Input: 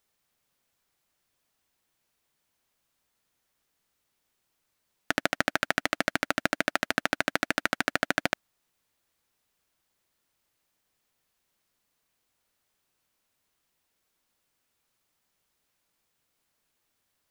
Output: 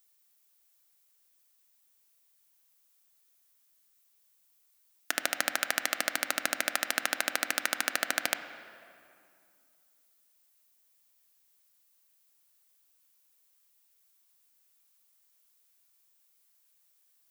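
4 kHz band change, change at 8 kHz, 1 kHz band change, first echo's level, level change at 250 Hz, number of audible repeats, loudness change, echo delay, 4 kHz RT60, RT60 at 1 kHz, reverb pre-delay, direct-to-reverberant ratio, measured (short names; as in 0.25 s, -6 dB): +0.5 dB, +6.0 dB, -4.5 dB, none, -11.0 dB, none, -2.0 dB, none, 1.7 s, 2.4 s, 18 ms, 9.0 dB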